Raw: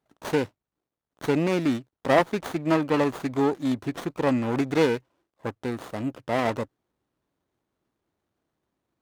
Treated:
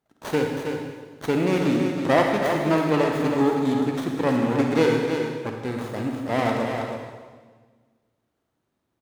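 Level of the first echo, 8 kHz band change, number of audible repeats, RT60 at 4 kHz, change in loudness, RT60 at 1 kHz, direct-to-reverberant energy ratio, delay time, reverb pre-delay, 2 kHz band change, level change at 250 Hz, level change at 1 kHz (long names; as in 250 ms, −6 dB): −6.5 dB, +3.0 dB, 1, 1.4 s, +2.5 dB, 1.4 s, 0.0 dB, 322 ms, 36 ms, +3.0 dB, +3.5 dB, +3.0 dB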